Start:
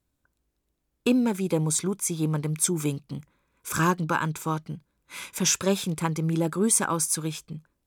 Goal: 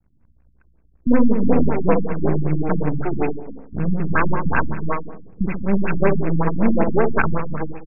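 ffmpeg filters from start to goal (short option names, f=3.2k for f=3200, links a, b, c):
-filter_complex "[0:a]lowpass=5.1k,lowshelf=f=230:g=7.5,aecho=1:1:4.5:0.33,adynamicequalizer=threshold=0.0112:dfrequency=1600:dqfactor=1.5:tfrequency=1600:tqfactor=1.5:attack=5:release=100:ratio=0.375:range=2.5:mode=boostabove:tftype=bell,acrossover=split=210[a][b];[a]acompressor=threshold=-40dB:ratio=5[c];[c][b]amix=inputs=2:normalize=0,acrossover=split=290[d][e];[e]adelay=360[f];[d][f]amix=inputs=2:normalize=0,aeval=exprs='max(val(0),0)':c=same,acrusher=bits=3:mode=log:mix=0:aa=0.000001,asplit=2[g][h];[h]adelay=66,lowpass=f=1.3k:p=1,volume=-4dB,asplit=2[i][j];[j]adelay=66,lowpass=f=1.3k:p=1,volume=0.52,asplit=2[k][l];[l]adelay=66,lowpass=f=1.3k:p=1,volume=0.52,asplit=2[m][n];[n]adelay=66,lowpass=f=1.3k:p=1,volume=0.52,asplit=2[o][p];[p]adelay=66,lowpass=f=1.3k:p=1,volume=0.52,asplit=2[q][r];[r]adelay=66,lowpass=f=1.3k:p=1,volume=0.52,asplit=2[s][t];[t]adelay=66,lowpass=f=1.3k:p=1,volume=0.52[u];[i][k][m][o][q][s][u]amix=inputs=7:normalize=0[v];[g][v]amix=inputs=2:normalize=0,alimiter=level_in=13.5dB:limit=-1dB:release=50:level=0:latency=1,afftfilt=real='re*lt(b*sr/1024,280*pow(2800/280,0.5+0.5*sin(2*PI*5.3*pts/sr)))':imag='im*lt(b*sr/1024,280*pow(2800/280,0.5+0.5*sin(2*PI*5.3*pts/sr)))':win_size=1024:overlap=0.75,volume=-1dB"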